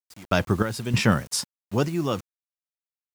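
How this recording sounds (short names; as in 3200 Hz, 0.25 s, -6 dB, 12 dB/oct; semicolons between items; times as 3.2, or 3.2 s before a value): random-step tremolo 3.2 Hz, depth 95%; a quantiser's noise floor 8-bit, dither none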